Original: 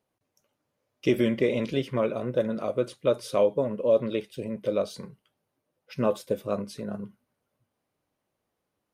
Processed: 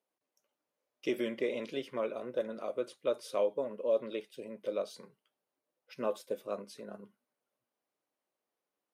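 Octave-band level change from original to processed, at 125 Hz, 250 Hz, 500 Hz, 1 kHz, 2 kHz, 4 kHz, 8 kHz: under -20 dB, -12.0 dB, -8.0 dB, -7.5 dB, -7.5 dB, -7.5 dB, -7.5 dB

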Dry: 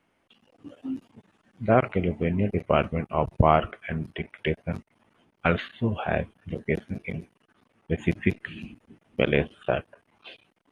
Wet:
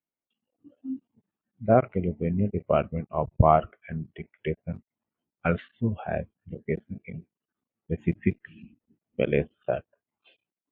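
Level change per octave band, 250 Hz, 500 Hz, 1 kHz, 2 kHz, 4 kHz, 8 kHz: -1.5 dB, -0.5 dB, -1.0 dB, -7.0 dB, under -10 dB, no reading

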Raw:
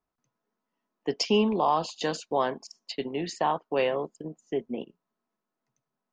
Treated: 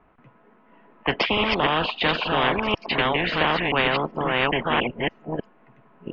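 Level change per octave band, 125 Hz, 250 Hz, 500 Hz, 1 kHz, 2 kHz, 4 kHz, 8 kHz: +9.5 dB, +3.5 dB, +3.0 dB, +5.5 dB, +16.5 dB, +11.0 dB, under -15 dB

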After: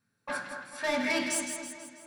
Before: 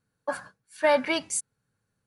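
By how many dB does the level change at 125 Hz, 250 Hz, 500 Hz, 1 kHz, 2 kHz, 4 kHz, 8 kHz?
no reading, 0.0 dB, -8.0 dB, -6.5 dB, -0.5 dB, -1.5 dB, -1.5 dB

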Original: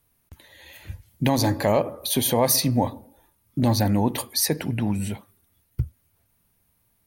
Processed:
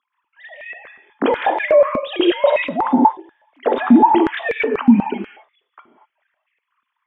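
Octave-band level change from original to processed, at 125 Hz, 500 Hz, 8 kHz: -10.0 dB, +9.0 dB, under -40 dB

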